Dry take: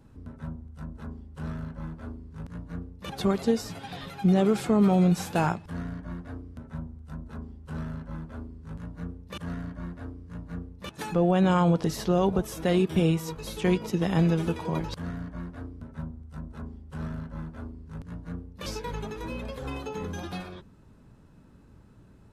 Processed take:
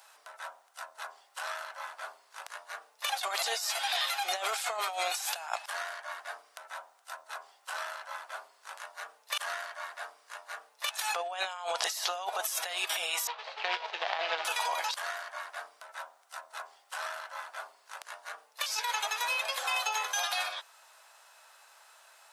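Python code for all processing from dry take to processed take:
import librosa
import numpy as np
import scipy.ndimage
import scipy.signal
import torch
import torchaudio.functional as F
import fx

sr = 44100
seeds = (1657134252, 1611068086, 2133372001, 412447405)

y = fx.chain(x, sr, fx.median_filter(points=25),
    fx.lowpass(hz=4200.0, slope=24), at=(13.27, 14.45))
y = scipy.signal.sosfilt(scipy.signal.ellip(4, 1.0, 70, 670.0, 'highpass', fs=sr, output='sos'), y)
y = fx.high_shelf(y, sr, hz=2400.0, db=12.0)
y = fx.over_compress(y, sr, threshold_db=-37.0, ratio=-1.0)
y = y * librosa.db_to_amplitude(4.0)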